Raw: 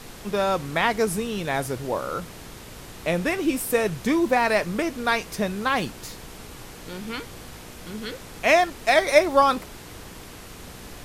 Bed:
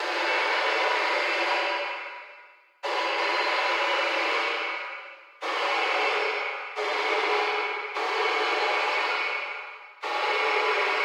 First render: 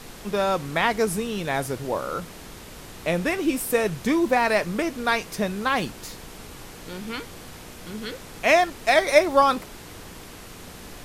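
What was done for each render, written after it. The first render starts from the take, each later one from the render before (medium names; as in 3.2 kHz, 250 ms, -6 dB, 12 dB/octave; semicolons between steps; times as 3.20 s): de-hum 60 Hz, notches 2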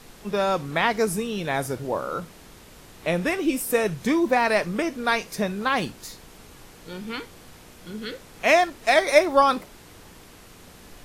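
noise print and reduce 6 dB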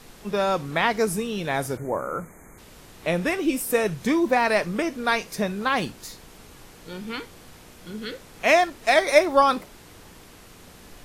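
1.77–2.58 s: spectral selection erased 2.4–6.2 kHz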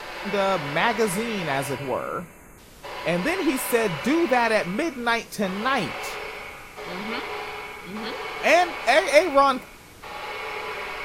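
add bed -7.5 dB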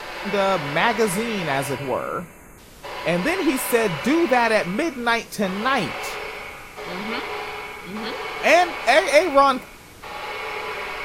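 trim +2.5 dB; peak limiter -2 dBFS, peak gain reduction 2.5 dB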